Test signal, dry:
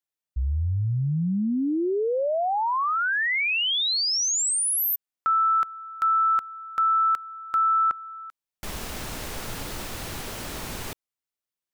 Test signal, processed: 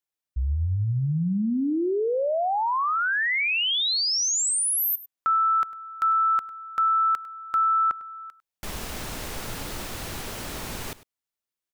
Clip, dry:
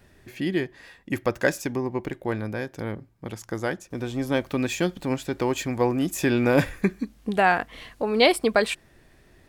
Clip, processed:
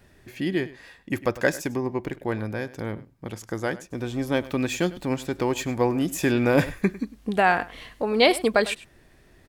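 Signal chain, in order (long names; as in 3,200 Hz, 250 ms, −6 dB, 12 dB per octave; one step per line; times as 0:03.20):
single-tap delay 101 ms −18 dB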